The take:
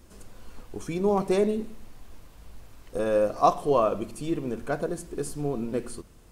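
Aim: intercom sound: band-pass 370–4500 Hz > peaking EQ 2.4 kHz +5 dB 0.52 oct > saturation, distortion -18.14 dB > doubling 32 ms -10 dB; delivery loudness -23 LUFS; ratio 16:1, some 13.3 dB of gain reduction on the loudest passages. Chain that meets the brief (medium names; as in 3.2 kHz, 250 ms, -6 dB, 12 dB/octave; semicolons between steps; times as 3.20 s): compression 16:1, threshold -27 dBFS; band-pass 370–4500 Hz; peaking EQ 2.4 kHz +5 dB 0.52 oct; saturation -25 dBFS; doubling 32 ms -10 dB; trim +14 dB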